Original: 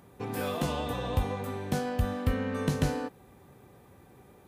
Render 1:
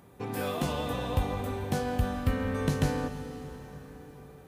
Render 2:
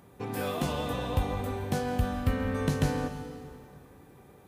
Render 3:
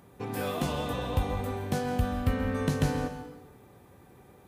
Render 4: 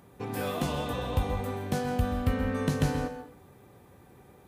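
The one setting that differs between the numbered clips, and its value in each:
dense smooth reverb, RT60: 5.1, 2.5, 1.1, 0.53 seconds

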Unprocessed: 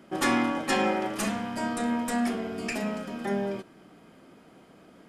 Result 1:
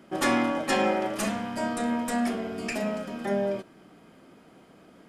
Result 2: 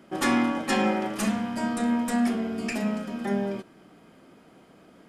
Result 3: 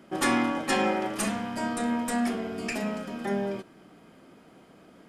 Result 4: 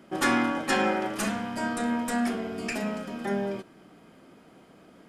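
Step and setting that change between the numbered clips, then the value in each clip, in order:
dynamic equaliser, frequency: 600, 220, 9,000, 1,500 Hertz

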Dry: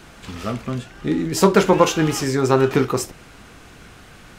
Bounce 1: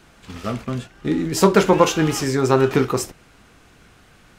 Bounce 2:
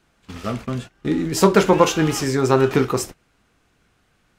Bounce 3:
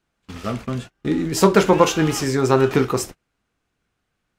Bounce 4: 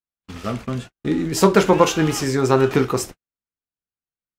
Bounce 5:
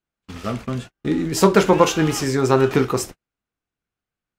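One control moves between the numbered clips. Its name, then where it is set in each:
noise gate, range: −7, −19, −31, −58, −44 decibels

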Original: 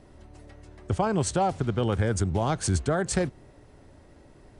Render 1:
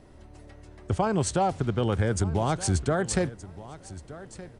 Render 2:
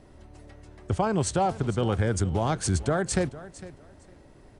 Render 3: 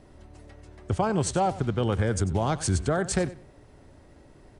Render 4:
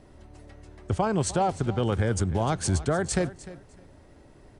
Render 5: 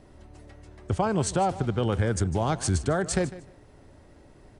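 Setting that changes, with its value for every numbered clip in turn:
repeating echo, delay time: 1,221, 455, 94, 302, 152 milliseconds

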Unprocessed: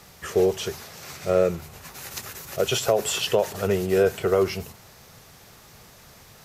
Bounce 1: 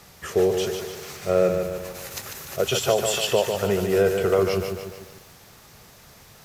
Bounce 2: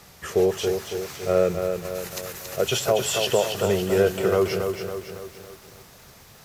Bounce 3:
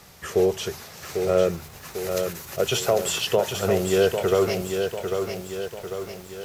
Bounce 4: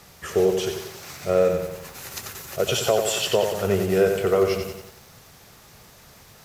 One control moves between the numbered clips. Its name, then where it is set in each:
feedback echo at a low word length, delay time: 147, 278, 797, 91 milliseconds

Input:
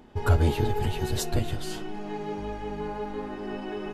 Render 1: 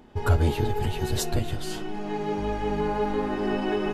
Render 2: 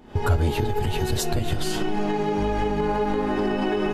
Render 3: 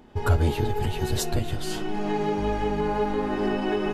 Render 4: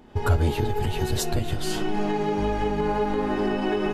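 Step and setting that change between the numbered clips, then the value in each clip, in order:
camcorder AGC, rising by: 5.4, 89, 13, 35 dB per second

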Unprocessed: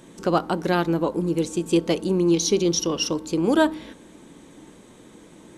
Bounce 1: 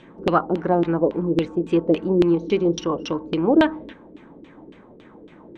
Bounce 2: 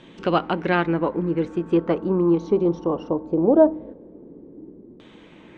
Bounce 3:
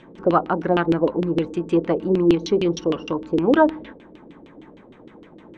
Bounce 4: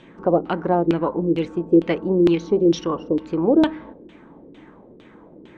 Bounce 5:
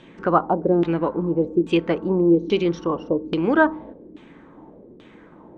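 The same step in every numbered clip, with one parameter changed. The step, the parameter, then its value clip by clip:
auto-filter low-pass, speed: 3.6, 0.2, 6.5, 2.2, 1.2 Hertz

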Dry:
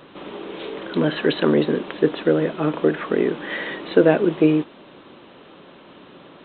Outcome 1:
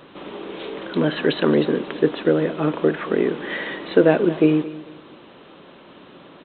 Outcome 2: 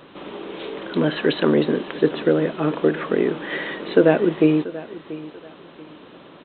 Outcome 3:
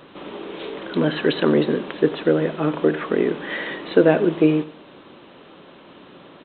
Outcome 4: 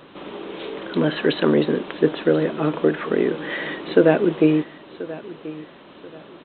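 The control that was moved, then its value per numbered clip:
repeating echo, delay time: 222, 686, 89, 1,034 milliseconds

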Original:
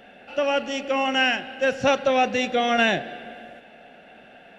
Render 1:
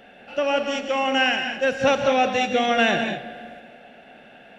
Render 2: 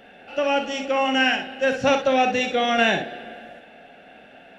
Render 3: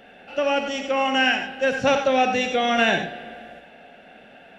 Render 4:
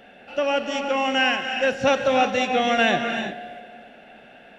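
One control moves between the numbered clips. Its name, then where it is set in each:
reverb whose tail is shaped and stops, gate: 230, 80, 120, 380 milliseconds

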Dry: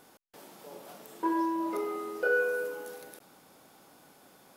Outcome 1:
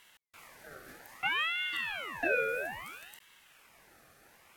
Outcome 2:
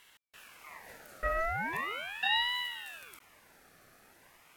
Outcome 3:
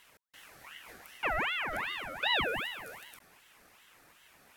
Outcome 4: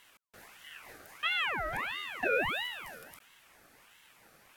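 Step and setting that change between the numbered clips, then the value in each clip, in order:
ring modulator whose carrier an LFO sweeps, at: 0.61, 0.39, 2.6, 1.5 Hertz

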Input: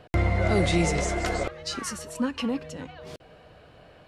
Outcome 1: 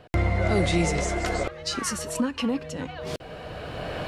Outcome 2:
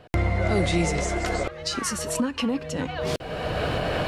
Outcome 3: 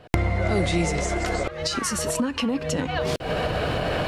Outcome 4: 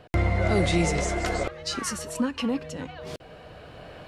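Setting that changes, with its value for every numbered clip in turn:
camcorder AGC, rising by: 13, 32, 82, 5.1 dB per second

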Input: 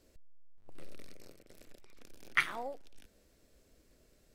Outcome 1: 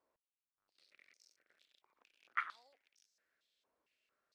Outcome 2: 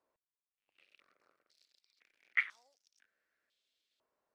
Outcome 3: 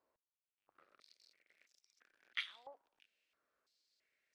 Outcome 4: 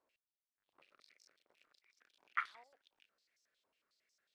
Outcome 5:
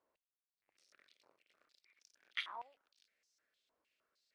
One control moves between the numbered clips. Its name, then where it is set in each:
band-pass on a step sequencer, speed: 4.4, 2, 3, 11, 6.5 Hertz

